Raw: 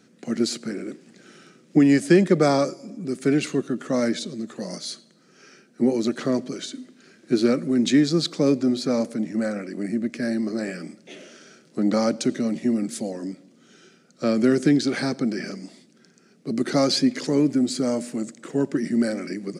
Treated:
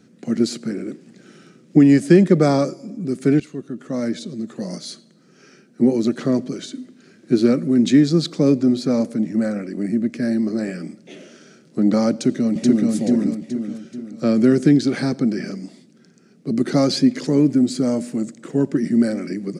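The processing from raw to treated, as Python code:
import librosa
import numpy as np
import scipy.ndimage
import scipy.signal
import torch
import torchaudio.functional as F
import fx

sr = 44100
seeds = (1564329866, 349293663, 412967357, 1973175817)

y = fx.echo_throw(x, sr, start_s=12.12, length_s=0.79, ms=430, feedback_pct=45, wet_db=-1.5)
y = fx.edit(y, sr, fx.fade_in_from(start_s=3.4, length_s=1.27, floor_db=-14.5), tone=tone)
y = fx.low_shelf(y, sr, hz=330.0, db=9.5)
y = y * 10.0 ** (-1.0 / 20.0)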